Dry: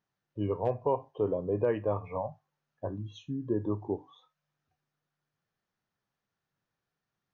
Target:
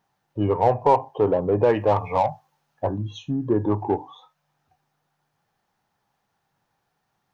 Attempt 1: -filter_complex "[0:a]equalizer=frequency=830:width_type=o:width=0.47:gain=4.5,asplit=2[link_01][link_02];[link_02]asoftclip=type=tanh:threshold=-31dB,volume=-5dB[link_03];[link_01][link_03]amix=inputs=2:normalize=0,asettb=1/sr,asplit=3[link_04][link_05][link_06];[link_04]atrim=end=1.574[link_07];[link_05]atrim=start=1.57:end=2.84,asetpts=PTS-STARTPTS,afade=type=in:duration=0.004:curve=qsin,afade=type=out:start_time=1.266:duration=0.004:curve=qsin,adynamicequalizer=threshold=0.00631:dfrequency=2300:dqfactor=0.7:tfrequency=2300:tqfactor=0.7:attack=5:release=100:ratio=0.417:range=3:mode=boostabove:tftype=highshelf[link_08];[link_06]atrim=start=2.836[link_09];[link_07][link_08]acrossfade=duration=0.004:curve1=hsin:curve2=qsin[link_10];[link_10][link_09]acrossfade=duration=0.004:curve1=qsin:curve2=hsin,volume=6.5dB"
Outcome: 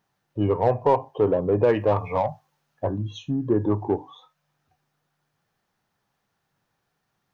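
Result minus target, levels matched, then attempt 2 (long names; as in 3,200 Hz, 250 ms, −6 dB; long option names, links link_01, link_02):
1,000 Hz band −3.0 dB
-filter_complex "[0:a]equalizer=frequency=830:width_type=o:width=0.47:gain=11,asplit=2[link_01][link_02];[link_02]asoftclip=type=tanh:threshold=-31dB,volume=-5dB[link_03];[link_01][link_03]amix=inputs=2:normalize=0,asettb=1/sr,asplit=3[link_04][link_05][link_06];[link_04]atrim=end=1.574[link_07];[link_05]atrim=start=1.57:end=2.84,asetpts=PTS-STARTPTS,afade=type=in:duration=0.004:curve=qsin,afade=type=out:start_time=1.266:duration=0.004:curve=qsin,adynamicequalizer=threshold=0.00631:dfrequency=2300:dqfactor=0.7:tfrequency=2300:tqfactor=0.7:attack=5:release=100:ratio=0.417:range=3:mode=boostabove:tftype=highshelf[link_08];[link_06]atrim=start=2.836[link_09];[link_07][link_08]acrossfade=duration=0.004:curve1=hsin:curve2=qsin[link_10];[link_10][link_09]acrossfade=duration=0.004:curve1=qsin:curve2=hsin,volume=6.5dB"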